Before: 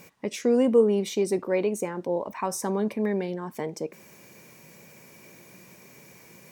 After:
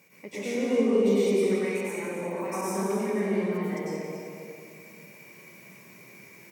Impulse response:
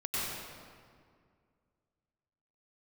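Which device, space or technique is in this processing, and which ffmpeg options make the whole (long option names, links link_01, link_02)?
stadium PA: -filter_complex "[0:a]asettb=1/sr,asplit=3[link_01][link_02][link_03];[link_01]atrim=end=1.434[link_04];[link_02]atrim=start=1.43:end=1.88,asetpts=PTS-STARTPTS,afade=type=in:duration=0.004:curve=qsin,afade=type=out:start_time=0.446:duration=0.004:curve=qsin,highpass=830[link_05];[link_03]atrim=start=1.876[link_06];[link_04][link_05]acrossfade=duration=0.004:curve1=hsin:curve2=qsin[link_07];[link_07][link_06]acrossfade=duration=0.004:curve1=qsin:curve2=hsin,highpass=130,equalizer=frequency=2200:width_type=o:width=0.35:gain=8,aecho=1:1:183.7|271.1:0.316|0.316[link_08];[1:a]atrim=start_sample=2205[link_09];[link_08][link_09]afir=irnorm=-1:irlink=0,highshelf=frequency=11000:gain=3.5,aecho=1:1:491:0.15,volume=-8.5dB"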